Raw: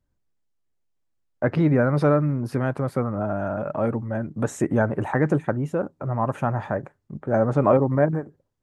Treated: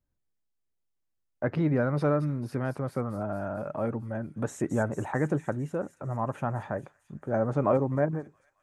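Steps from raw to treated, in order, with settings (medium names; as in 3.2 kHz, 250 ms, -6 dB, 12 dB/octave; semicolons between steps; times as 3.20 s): feedback echo behind a high-pass 223 ms, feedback 65%, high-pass 5.5 kHz, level -4.5 dB; trim -6.5 dB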